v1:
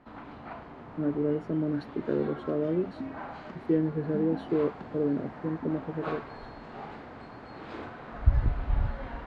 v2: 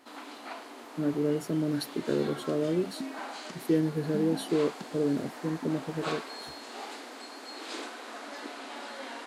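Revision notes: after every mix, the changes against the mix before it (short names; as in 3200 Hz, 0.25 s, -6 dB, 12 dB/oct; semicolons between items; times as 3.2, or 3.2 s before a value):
first sound: add brick-wall FIR high-pass 230 Hz; master: remove LPF 1700 Hz 12 dB/oct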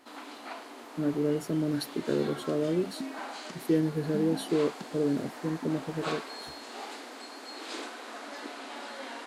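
speech: remove HPF 54 Hz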